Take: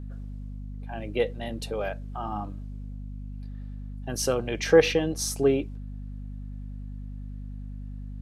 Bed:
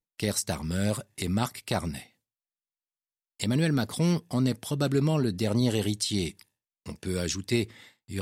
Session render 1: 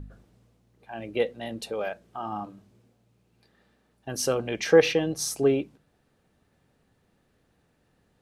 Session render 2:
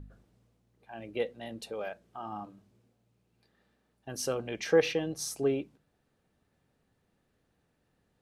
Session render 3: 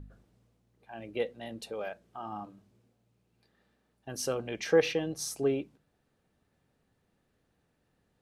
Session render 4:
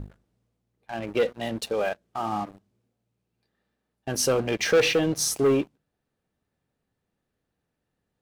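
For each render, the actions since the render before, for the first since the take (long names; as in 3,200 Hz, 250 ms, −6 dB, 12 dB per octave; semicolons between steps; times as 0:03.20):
hum removal 50 Hz, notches 5
level −6.5 dB
no processing that can be heard
leveller curve on the samples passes 3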